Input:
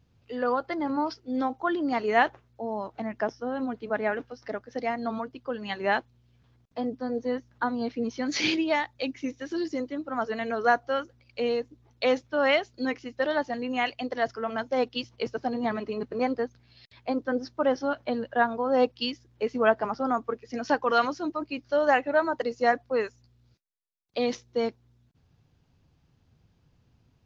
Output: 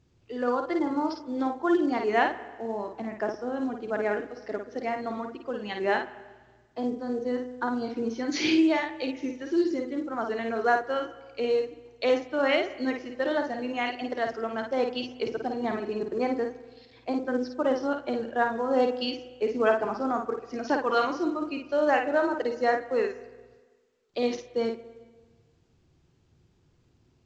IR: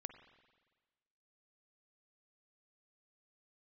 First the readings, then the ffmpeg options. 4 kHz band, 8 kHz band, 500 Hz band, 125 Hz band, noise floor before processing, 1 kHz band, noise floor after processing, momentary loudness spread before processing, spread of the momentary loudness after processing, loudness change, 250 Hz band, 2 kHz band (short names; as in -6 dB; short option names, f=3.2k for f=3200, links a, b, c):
-1.5 dB, n/a, +0.5 dB, -2.0 dB, -66 dBFS, -1.5 dB, -65 dBFS, 10 LU, 9 LU, 0.0 dB, +1.5 dB, -1.5 dB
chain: -filter_complex "[0:a]equalizer=f=360:w=3.4:g=10,asplit=2[a][b];[1:a]atrim=start_sample=2205,adelay=53[c];[b][c]afir=irnorm=-1:irlink=0,volume=0dB[d];[a][d]amix=inputs=2:normalize=0,volume=-3dB" -ar 16000 -c:a pcm_mulaw